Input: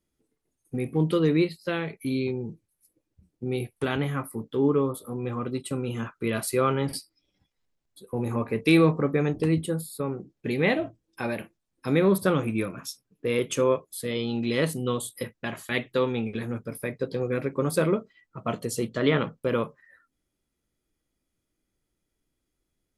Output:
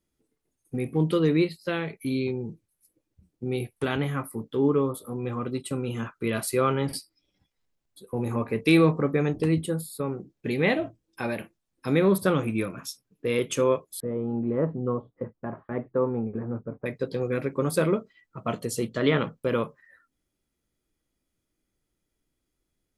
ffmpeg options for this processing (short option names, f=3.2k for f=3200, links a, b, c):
-filter_complex "[0:a]asettb=1/sr,asplit=3[a][b][c];[a]atrim=end=14.004[d];[b]atrim=start=14:end=16.86,asetpts=PTS-STARTPTS,afade=t=in:d=0.004:c=qsin,afade=t=out:st=2.856:d=0.004:c=qsin,lowpass=f=1.2k:w=0.5412,lowpass=f=1.2k:w=1.3066[e];[c]atrim=start=16.856[f];[d][e]acrossfade=d=0.004:c1=hsin:c2=qsin[g];[g][f]acrossfade=d=0.004:c1=qsin:c2=hsin"